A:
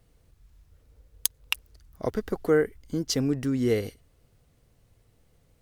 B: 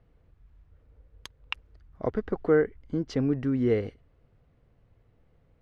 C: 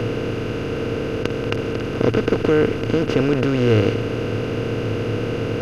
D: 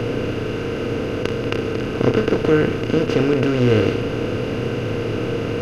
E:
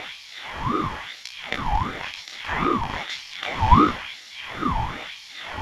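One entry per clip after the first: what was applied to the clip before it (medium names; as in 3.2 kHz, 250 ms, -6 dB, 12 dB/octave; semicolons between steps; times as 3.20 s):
low-pass 2.1 kHz 12 dB/octave
spectral levelling over time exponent 0.2; peaking EQ 110 Hz +14.5 dB 0.23 oct; trim +2 dB
flutter echo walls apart 5.5 m, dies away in 0.26 s
chorus 0.77 Hz, delay 16.5 ms, depth 5.4 ms; LFO high-pass sine 1 Hz 410–4300 Hz; ring modulator with a swept carrier 590 Hz, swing 35%, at 2.6 Hz; trim +2.5 dB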